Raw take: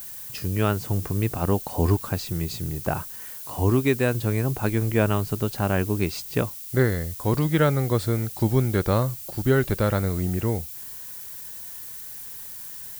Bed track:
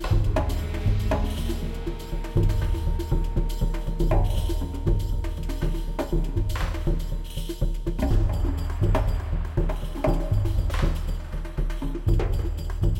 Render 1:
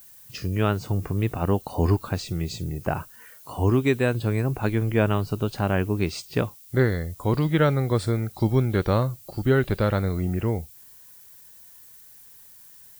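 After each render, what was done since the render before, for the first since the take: noise print and reduce 11 dB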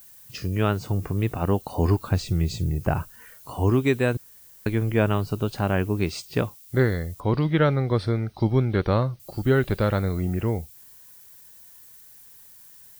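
2.10–3.51 s: bass shelf 120 Hz +10.5 dB; 4.17–4.66 s: room tone; 7.20–9.20 s: Savitzky-Golay filter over 15 samples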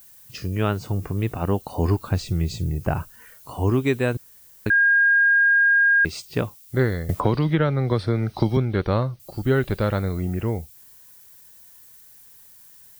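4.70–6.05 s: bleep 1.62 kHz -13.5 dBFS; 7.09–8.57 s: three bands compressed up and down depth 100%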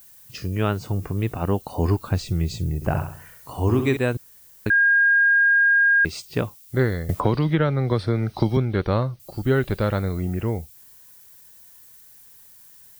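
2.75–3.97 s: flutter echo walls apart 11.4 m, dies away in 0.54 s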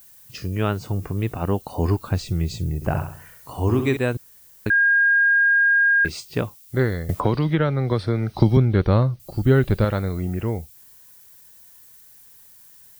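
5.88–6.30 s: doubling 27 ms -10 dB; 8.35–9.85 s: bass shelf 280 Hz +7 dB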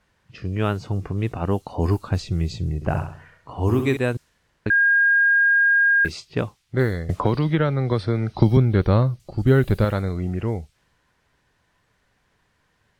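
level-controlled noise filter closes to 2.1 kHz, open at -15 dBFS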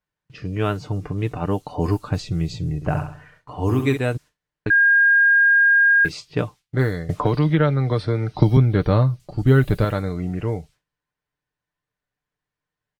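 gate with hold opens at -42 dBFS; comb 6.7 ms, depth 44%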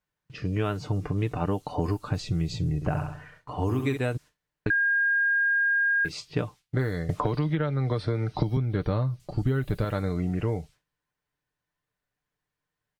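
compression, threshold -23 dBFS, peak gain reduction 13 dB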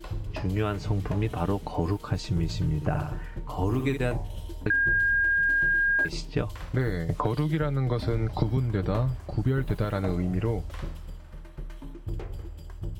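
add bed track -12 dB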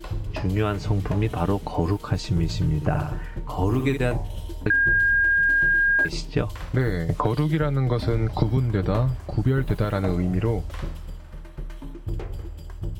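trim +4 dB

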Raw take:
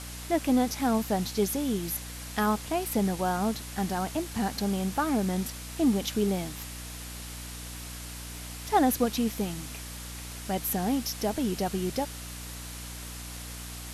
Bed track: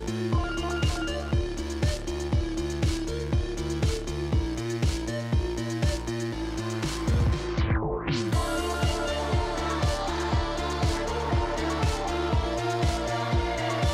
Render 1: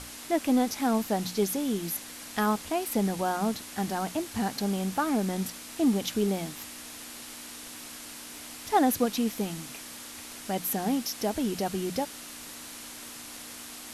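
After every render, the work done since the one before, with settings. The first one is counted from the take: hum notches 60/120/180 Hz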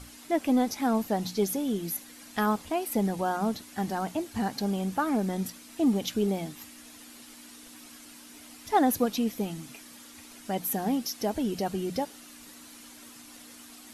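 noise reduction 9 dB, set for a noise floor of -43 dBFS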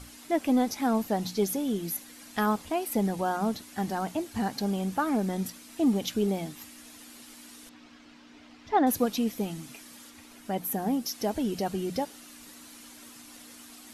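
7.69–8.87 s: distance through air 190 m; 10.09–11.05 s: peaking EQ 12 kHz -> 2.9 kHz -5.5 dB 2.2 oct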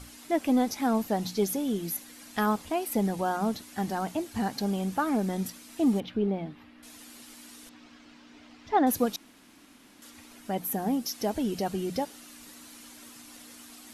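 6.00–6.83 s: distance through air 390 m; 9.16–10.02 s: room tone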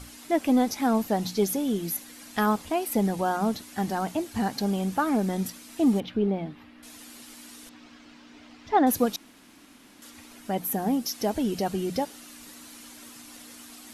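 trim +2.5 dB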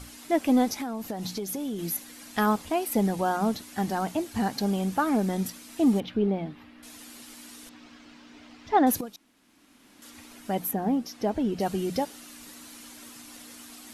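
0.74–1.79 s: compression 12:1, threshold -28 dBFS; 9.01–10.14 s: fade in quadratic, from -14 dB; 10.71–11.60 s: low-pass 1.9 kHz 6 dB/octave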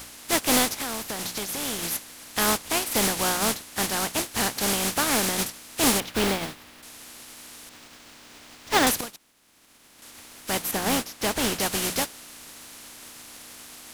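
spectral contrast reduction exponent 0.38; in parallel at -12 dB: integer overflow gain 17.5 dB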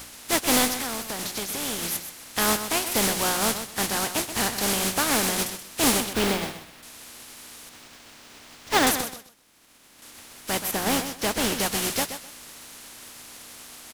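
feedback delay 128 ms, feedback 21%, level -10 dB

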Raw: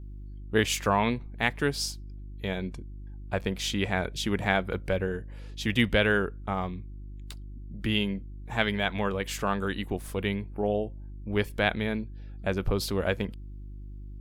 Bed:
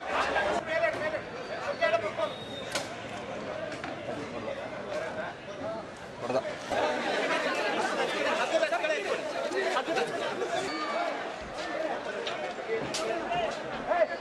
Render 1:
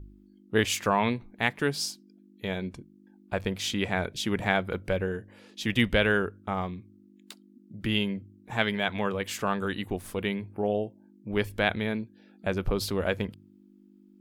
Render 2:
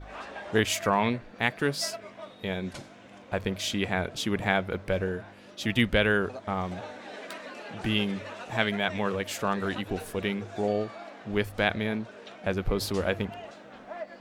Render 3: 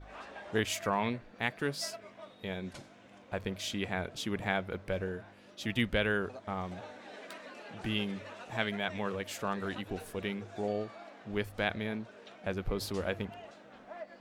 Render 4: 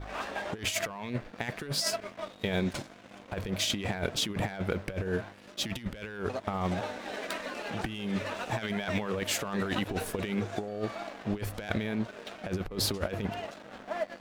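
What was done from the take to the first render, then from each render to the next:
de-hum 50 Hz, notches 3
add bed -12.5 dB
trim -6.5 dB
waveshaping leveller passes 2; compressor with a negative ratio -31 dBFS, ratio -0.5

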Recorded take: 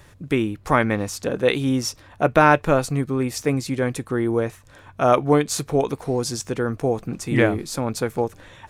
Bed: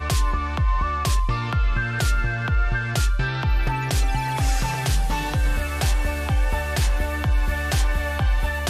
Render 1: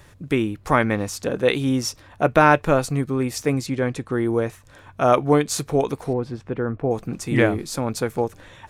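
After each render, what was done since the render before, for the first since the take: 3.66–4.12 s: distance through air 58 m; 6.13–6.91 s: distance through air 500 m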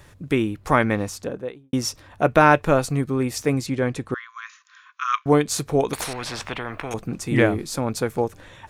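0.95–1.73 s: studio fade out; 4.14–5.26 s: brick-wall FIR band-pass 1–7.1 kHz; 5.93–6.94 s: spectrum-flattening compressor 4:1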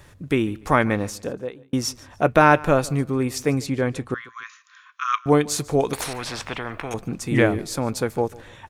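feedback delay 146 ms, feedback 28%, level -22 dB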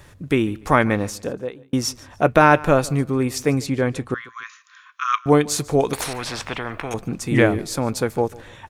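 trim +2 dB; peak limiter -1 dBFS, peak gain reduction 1.5 dB

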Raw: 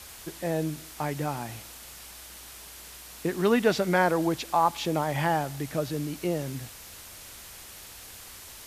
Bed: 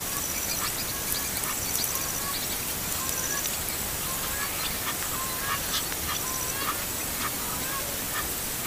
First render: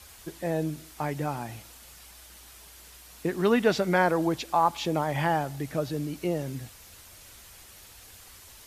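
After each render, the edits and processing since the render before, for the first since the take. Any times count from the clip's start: noise reduction 6 dB, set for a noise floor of -46 dBFS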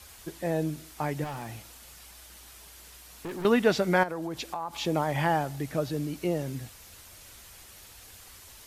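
1.24–3.45 s: overload inside the chain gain 33.5 dB; 4.03–4.74 s: compression 12:1, threshold -29 dBFS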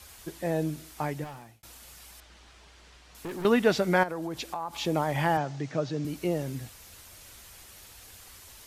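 1.01–1.63 s: fade out; 2.20–3.15 s: distance through air 120 m; 5.37–6.05 s: elliptic band-pass 120–6400 Hz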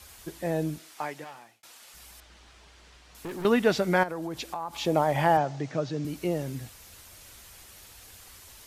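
0.78–1.94 s: frequency weighting A; 4.86–5.72 s: peaking EQ 650 Hz +6 dB 1.1 oct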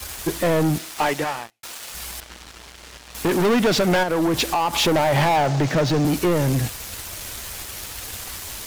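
compression 3:1, threshold -26 dBFS, peak gain reduction 7.5 dB; waveshaping leveller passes 5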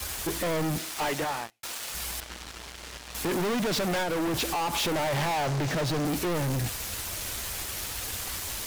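hard clipper -26.5 dBFS, distortion -8 dB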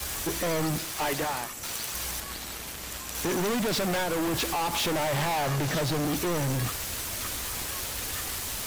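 add bed -9.5 dB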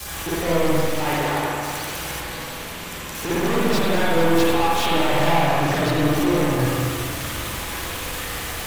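echo whose repeats swap between lows and highs 226 ms, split 2.3 kHz, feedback 59%, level -7 dB; spring tank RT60 1.6 s, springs 48/54 ms, chirp 50 ms, DRR -6.5 dB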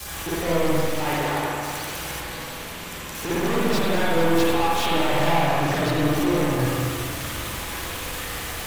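trim -2 dB

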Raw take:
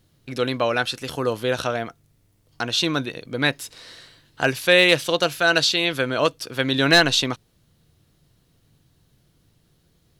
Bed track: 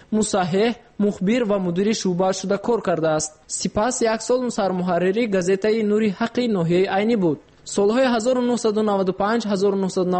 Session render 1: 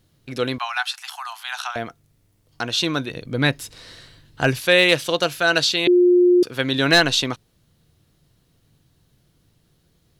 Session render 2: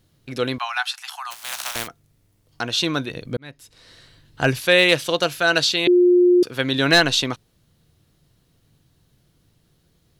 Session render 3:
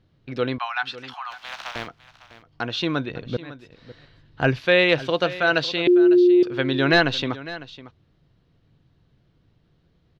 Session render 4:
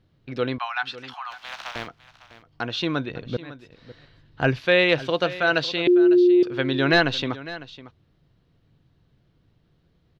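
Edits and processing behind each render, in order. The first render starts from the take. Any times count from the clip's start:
0.58–1.76 s: steep high-pass 730 Hz 96 dB/octave; 3.10–4.60 s: bass shelf 180 Hz +11.5 dB; 5.87–6.43 s: bleep 356 Hz -10.5 dBFS
1.30–1.86 s: spectral contrast reduction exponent 0.24; 3.37–4.47 s: fade in
distance through air 240 m; delay 553 ms -16.5 dB
trim -1 dB

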